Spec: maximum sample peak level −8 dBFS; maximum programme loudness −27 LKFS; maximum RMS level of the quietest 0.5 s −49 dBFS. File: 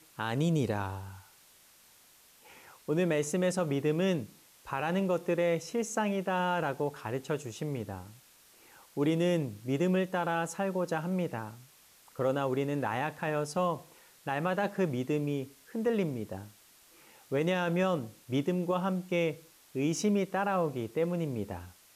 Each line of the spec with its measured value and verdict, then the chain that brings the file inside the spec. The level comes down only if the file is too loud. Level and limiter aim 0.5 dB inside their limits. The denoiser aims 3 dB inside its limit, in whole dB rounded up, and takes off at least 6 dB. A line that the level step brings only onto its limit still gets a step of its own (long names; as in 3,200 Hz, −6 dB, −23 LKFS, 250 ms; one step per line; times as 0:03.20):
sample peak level −18.5 dBFS: in spec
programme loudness −32.0 LKFS: in spec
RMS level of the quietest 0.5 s −60 dBFS: in spec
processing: no processing needed